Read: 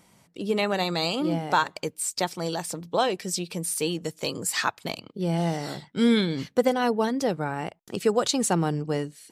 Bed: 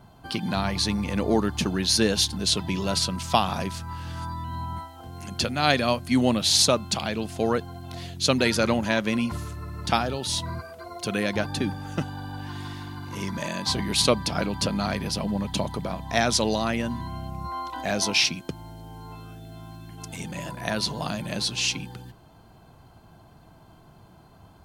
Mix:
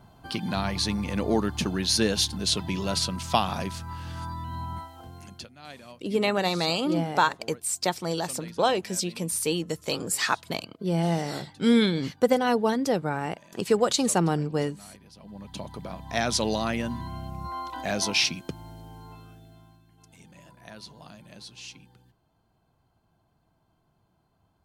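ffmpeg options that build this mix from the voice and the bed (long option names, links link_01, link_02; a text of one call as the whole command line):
ffmpeg -i stem1.wav -i stem2.wav -filter_complex "[0:a]adelay=5650,volume=0.5dB[link_01];[1:a]volume=19.5dB,afade=type=out:start_time=4.99:duration=0.49:silence=0.0841395,afade=type=in:start_time=15.16:duration=1.36:silence=0.0841395,afade=type=out:start_time=18.75:duration=1.09:silence=0.16788[link_02];[link_01][link_02]amix=inputs=2:normalize=0" out.wav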